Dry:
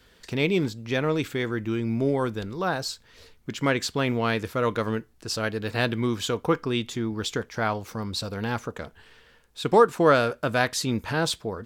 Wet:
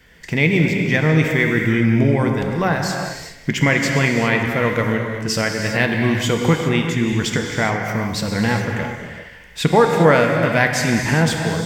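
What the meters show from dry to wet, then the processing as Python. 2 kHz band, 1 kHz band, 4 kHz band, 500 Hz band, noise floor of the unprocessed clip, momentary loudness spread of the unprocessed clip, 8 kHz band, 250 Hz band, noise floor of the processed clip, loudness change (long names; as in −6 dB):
+11.5 dB, +5.5 dB, +5.5 dB, +5.5 dB, −58 dBFS, 11 LU, +7.5 dB, +9.0 dB, −41 dBFS, +8.0 dB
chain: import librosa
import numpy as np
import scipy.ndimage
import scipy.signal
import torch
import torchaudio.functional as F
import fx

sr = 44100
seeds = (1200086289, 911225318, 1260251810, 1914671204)

y = fx.reverse_delay_fb(x, sr, ms=103, feedback_pct=46, wet_db=-14)
y = fx.recorder_agc(y, sr, target_db=-13.5, rise_db_per_s=7.6, max_gain_db=30)
y = fx.graphic_eq_31(y, sr, hz=(160, 400, 1250, 2000, 4000, 10000), db=(9, -4, -6, 12, -9, -6))
y = fx.rev_gated(y, sr, seeds[0], gate_ms=430, shape='flat', drr_db=2.5)
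y = y * 10.0 ** (4.5 / 20.0)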